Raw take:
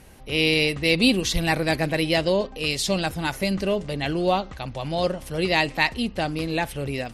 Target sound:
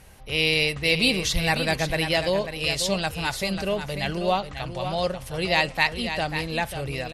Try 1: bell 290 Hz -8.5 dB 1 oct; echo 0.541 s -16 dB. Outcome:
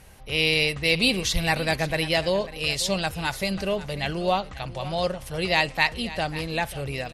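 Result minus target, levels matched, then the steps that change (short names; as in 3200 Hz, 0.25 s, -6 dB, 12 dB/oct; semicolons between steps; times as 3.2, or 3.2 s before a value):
echo-to-direct -7 dB
change: echo 0.541 s -9 dB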